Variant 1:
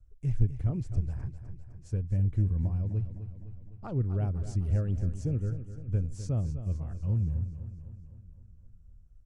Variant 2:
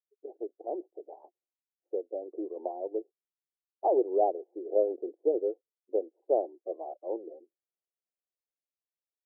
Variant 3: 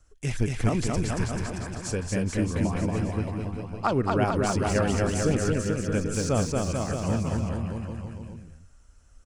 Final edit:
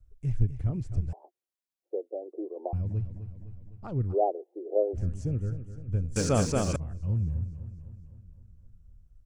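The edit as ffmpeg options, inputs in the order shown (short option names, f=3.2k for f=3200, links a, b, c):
-filter_complex "[1:a]asplit=2[a][b];[0:a]asplit=4[c][d][e][f];[c]atrim=end=1.132[g];[a]atrim=start=1.128:end=2.732[h];[d]atrim=start=2.728:end=4.15[i];[b]atrim=start=4.11:end=4.97[j];[e]atrim=start=4.93:end=6.162[k];[2:a]atrim=start=6.158:end=6.762[l];[f]atrim=start=6.758[m];[g][h]acrossfade=d=0.004:c1=hsin:c2=hsin[n];[n][i]acrossfade=d=0.004:c1=hsin:c2=hsin[o];[o][j]acrossfade=d=0.04:c1=tri:c2=tri[p];[p][k]acrossfade=d=0.04:c1=tri:c2=tri[q];[q][l]acrossfade=d=0.004:c1=hsin:c2=hsin[r];[r][m]acrossfade=d=0.004:c1=hsin:c2=hsin"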